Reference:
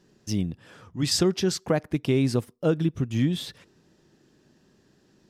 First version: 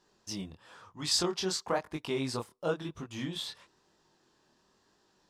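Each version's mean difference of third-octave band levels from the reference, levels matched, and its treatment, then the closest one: 5.5 dB: graphic EQ 125/250/1000/4000/8000 Hz -7/-4/+12/+6/+5 dB; chorus 1 Hz, delay 19 ms, depth 7.5 ms; gain -6 dB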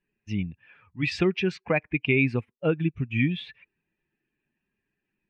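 8.5 dB: per-bin expansion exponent 1.5; synth low-pass 2400 Hz, resonance Q 9.6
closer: first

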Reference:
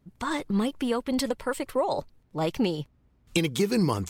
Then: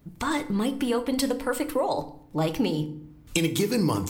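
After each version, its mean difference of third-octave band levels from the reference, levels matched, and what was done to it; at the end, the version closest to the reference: 4.0 dB: high shelf 12000 Hz +10.5 dB; compressor 1.5:1, threshold -45 dBFS, peak gain reduction 9 dB; FDN reverb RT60 0.61 s, low-frequency decay 1.55×, high-frequency decay 0.7×, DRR 8 dB; gain +8 dB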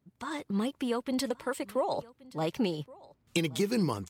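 1.5 dB: HPF 92 Hz 12 dB/oct; AGC gain up to 4 dB; echo 1.123 s -22 dB; gain -8 dB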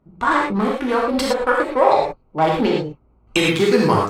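7.5 dB: Wiener smoothing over 25 samples; bell 1300 Hz +13.5 dB 2.9 oct; non-linear reverb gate 0.14 s flat, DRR -3.5 dB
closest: second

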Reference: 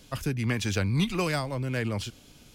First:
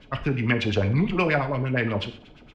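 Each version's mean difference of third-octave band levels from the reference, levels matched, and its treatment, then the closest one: 7.0 dB: LFO low-pass sine 8.5 Hz 500–3000 Hz; on a send: feedback echo 93 ms, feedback 51%, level -23 dB; on the sum: non-linear reverb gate 0.16 s falling, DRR 6.5 dB; gain +3 dB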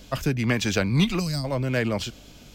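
2.5 dB: spectral gain 1.19–1.44, 300–3800 Hz -17 dB; thirty-one-band EQ 100 Hz -9 dB, 630 Hz +5 dB, 10000 Hz -11 dB; hum 50 Hz, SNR 27 dB; gain +5.5 dB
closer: second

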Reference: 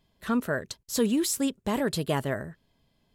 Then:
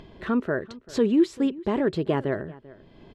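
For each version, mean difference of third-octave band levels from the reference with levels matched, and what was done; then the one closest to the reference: 7.0 dB: LPF 2700 Hz 12 dB/oct; bell 360 Hz +10.5 dB 0.57 oct; upward compressor, threshold -31 dBFS; outdoor echo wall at 67 m, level -20 dB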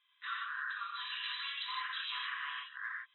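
22.5 dB: reverse delay 0.288 s, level -0.5 dB; FFT band-pass 1000–4000 Hz; compressor, threshold -42 dBFS, peak gain reduction 13 dB; non-linear reverb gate 0.19 s flat, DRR -5 dB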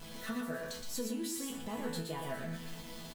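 10.0 dB: zero-crossing step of -32.5 dBFS; resonator bank E3 sus4, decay 0.37 s; compressor 4:1, threshold -44 dBFS, peak gain reduction 9.5 dB; echo 0.119 s -4.5 dB; gain +7.5 dB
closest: first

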